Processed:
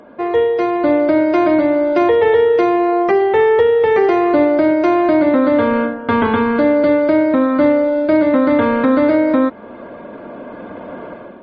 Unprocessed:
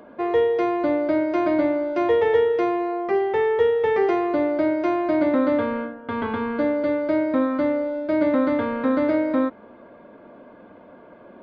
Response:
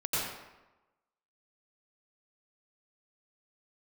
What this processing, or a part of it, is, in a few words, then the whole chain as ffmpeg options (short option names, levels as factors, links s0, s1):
low-bitrate web radio: -af "dynaudnorm=f=690:g=3:m=5.01,alimiter=limit=0.376:level=0:latency=1:release=402,volume=1.68" -ar 48000 -c:a libmp3lame -b:a 32k